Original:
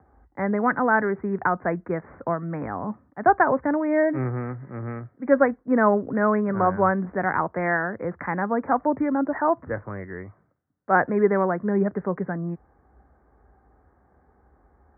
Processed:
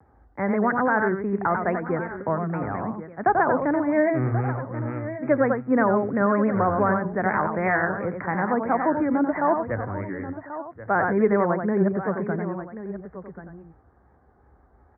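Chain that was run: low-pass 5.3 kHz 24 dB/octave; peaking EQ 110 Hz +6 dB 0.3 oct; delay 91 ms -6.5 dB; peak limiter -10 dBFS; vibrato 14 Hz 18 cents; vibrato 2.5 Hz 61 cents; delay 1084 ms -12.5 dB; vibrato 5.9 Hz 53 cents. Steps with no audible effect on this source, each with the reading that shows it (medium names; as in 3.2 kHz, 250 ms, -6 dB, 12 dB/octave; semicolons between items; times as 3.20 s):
low-pass 5.3 kHz: input has nothing above 2.2 kHz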